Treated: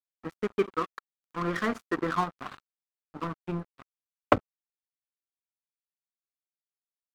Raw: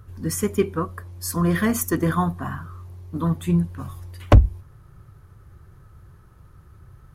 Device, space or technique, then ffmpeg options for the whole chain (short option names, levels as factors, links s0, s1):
pocket radio on a weak battery: -filter_complex "[0:a]asplit=3[s0][s1][s2];[s0]afade=t=out:st=0.49:d=0.02[s3];[s1]bandreject=f=52.88:t=h:w=4,bandreject=f=105.76:t=h:w=4,bandreject=f=158.64:t=h:w=4,bandreject=f=211.52:t=h:w=4,bandreject=f=264.4:t=h:w=4,bandreject=f=317.28:t=h:w=4,bandreject=f=370.16:t=h:w=4,afade=t=in:st=0.49:d=0.02,afade=t=out:st=2.14:d=0.02[s4];[s2]afade=t=in:st=2.14:d=0.02[s5];[s3][s4][s5]amix=inputs=3:normalize=0,highpass=280,lowpass=3000,aeval=exprs='sgn(val(0))*max(abs(val(0))-0.0237,0)':c=same,equalizer=f=1300:t=o:w=0.29:g=8,volume=0.794"